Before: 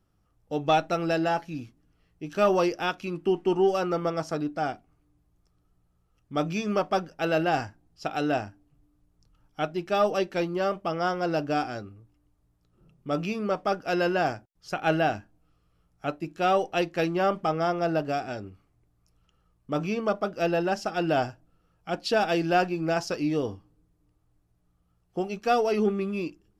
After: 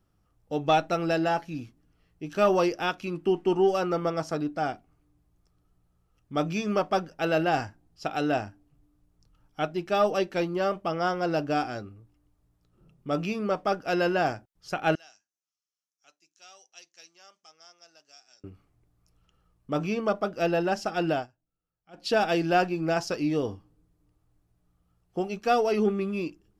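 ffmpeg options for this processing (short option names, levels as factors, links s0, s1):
-filter_complex "[0:a]asettb=1/sr,asplit=3[s0][s1][s2];[s0]atrim=end=14.954[s3];[s1]atrim=start=14.95:end=18.44,asetpts=PTS-STARTPTS,afade=t=in:d=0.004:c=qsin,afade=t=out:st=3.486:d=0.004:c=qsin,bandpass=f=6200:t=q:w=5.1[s4];[s2]atrim=start=18.436[s5];[s3][s4]acrossfade=d=0.004:c1=hsin:c2=qsin[s6];[s6][s5]acrossfade=d=0.004:c1=qsin:c2=hsin,asplit=3[s7][s8][s9];[s7]atrim=end=21.27,asetpts=PTS-STARTPTS,afade=t=out:st=21.09:d=0.18:silence=0.0794328[s10];[s8]atrim=start=21.27:end=21.93,asetpts=PTS-STARTPTS,volume=0.0794[s11];[s9]atrim=start=21.93,asetpts=PTS-STARTPTS,afade=t=in:d=0.18:silence=0.0794328[s12];[s10][s11][s12]concat=n=3:v=0:a=1"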